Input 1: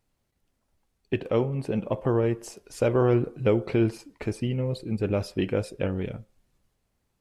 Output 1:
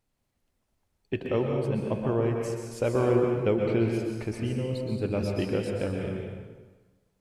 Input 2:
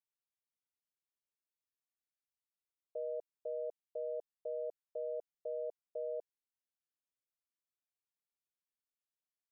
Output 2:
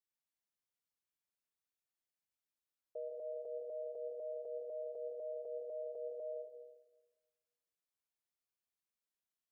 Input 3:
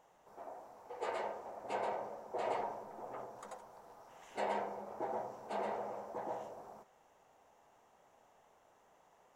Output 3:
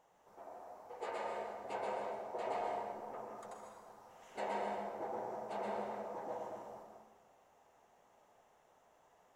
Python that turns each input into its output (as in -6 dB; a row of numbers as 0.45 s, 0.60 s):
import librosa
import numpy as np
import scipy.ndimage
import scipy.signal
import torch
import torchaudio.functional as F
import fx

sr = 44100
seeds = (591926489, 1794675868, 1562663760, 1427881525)

y = fx.rev_plate(x, sr, seeds[0], rt60_s=1.3, hf_ratio=0.85, predelay_ms=110, drr_db=1.0)
y = F.gain(torch.from_numpy(y), -3.5).numpy()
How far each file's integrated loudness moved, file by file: -1.5 LU, -2.0 LU, -0.5 LU